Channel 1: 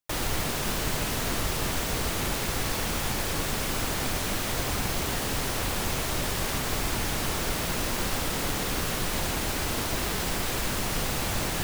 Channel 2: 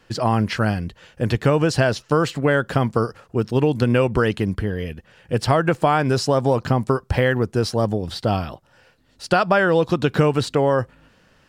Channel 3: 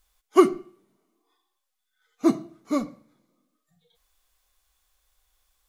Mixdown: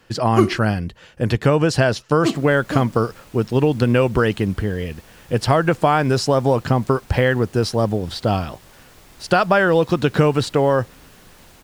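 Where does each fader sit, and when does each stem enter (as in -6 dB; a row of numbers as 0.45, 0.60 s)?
-19.0, +1.5, -1.0 dB; 2.25, 0.00, 0.00 s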